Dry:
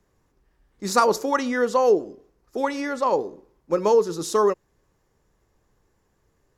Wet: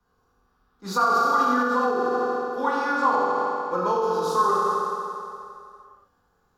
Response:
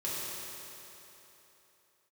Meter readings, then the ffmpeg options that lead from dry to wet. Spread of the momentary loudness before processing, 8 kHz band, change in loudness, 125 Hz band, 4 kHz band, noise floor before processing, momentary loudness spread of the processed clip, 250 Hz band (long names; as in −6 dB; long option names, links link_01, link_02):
15 LU, −7.0 dB, −0.5 dB, −2.0 dB, −2.0 dB, −68 dBFS, 13 LU, −1.5 dB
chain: -filter_complex "[0:a]equalizer=frequency=1400:width=1.9:gain=10[link_01];[1:a]atrim=start_sample=2205,asetrate=57330,aresample=44100[link_02];[link_01][link_02]afir=irnorm=-1:irlink=0,acrossover=split=190|3000[link_03][link_04][link_05];[link_05]volume=24.5dB,asoftclip=hard,volume=-24.5dB[link_06];[link_03][link_04][link_06]amix=inputs=3:normalize=0,alimiter=limit=-9.5dB:level=0:latency=1:release=90,equalizer=frequency=125:width_type=o:width=1:gain=-8,equalizer=frequency=500:width_type=o:width=1:gain=-9,equalizer=frequency=1000:width_type=o:width=1:gain=6,equalizer=frequency=2000:width_type=o:width=1:gain=-12,equalizer=frequency=4000:width_type=o:width=1:gain=4,equalizer=frequency=8000:width_type=o:width=1:gain=-11"